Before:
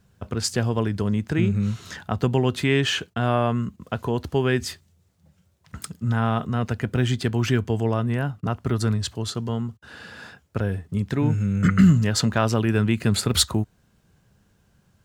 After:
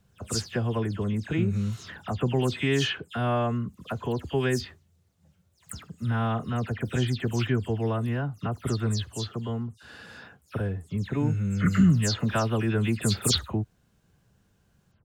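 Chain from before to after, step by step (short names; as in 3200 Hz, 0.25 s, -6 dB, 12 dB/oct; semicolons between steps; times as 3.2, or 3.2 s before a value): spectral delay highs early, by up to 0.128 s; gain -4 dB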